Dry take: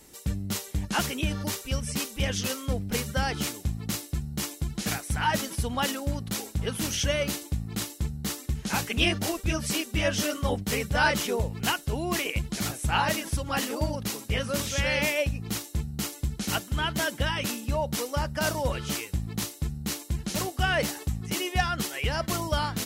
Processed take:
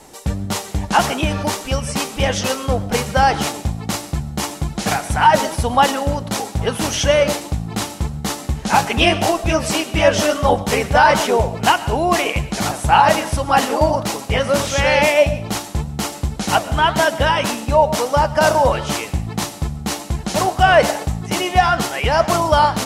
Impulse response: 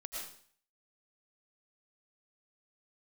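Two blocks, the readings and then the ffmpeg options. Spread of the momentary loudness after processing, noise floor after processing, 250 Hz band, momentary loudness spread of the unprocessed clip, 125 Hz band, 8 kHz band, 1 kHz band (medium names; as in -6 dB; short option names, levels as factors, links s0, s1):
11 LU, -33 dBFS, +8.5 dB, 7 LU, +7.5 dB, +7.0 dB, +16.5 dB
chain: -filter_complex "[0:a]lowpass=11000,equalizer=f=800:w=1.1:g=11.5,flanger=delay=5.9:depth=7:regen=85:speed=1.7:shape=sinusoidal,asplit=2[s0][s1];[1:a]atrim=start_sample=2205[s2];[s1][s2]afir=irnorm=-1:irlink=0,volume=0.266[s3];[s0][s3]amix=inputs=2:normalize=0,alimiter=level_in=3.98:limit=0.891:release=50:level=0:latency=1,volume=0.891"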